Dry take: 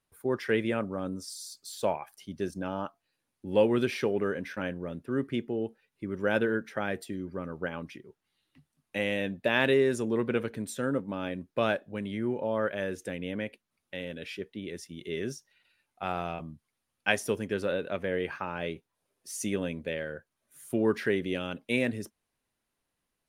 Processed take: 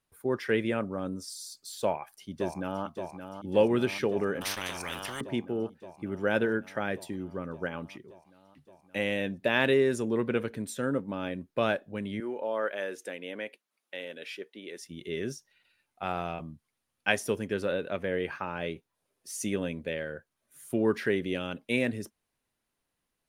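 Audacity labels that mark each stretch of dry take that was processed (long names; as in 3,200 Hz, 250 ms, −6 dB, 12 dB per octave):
1.810000	2.840000	delay throw 570 ms, feedback 80%, level −8.5 dB
4.410000	5.210000	every bin compressed towards the loudest bin 10 to 1
12.200000	14.820000	high-pass filter 390 Hz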